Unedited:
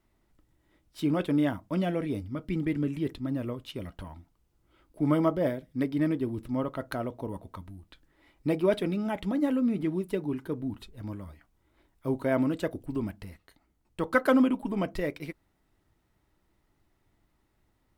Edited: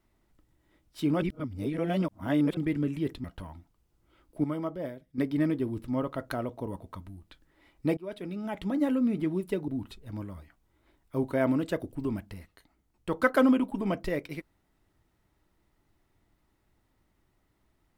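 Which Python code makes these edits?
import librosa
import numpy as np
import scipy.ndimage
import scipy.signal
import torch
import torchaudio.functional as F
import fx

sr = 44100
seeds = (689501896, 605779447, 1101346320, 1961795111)

y = fx.edit(x, sr, fx.reverse_span(start_s=1.22, length_s=1.35),
    fx.cut(start_s=3.24, length_s=0.61),
    fx.clip_gain(start_s=5.05, length_s=0.74, db=-8.5),
    fx.fade_in_from(start_s=8.58, length_s=0.84, floor_db=-23.0),
    fx.cut(start_s=10.29, length_s=0.3), tone=tone)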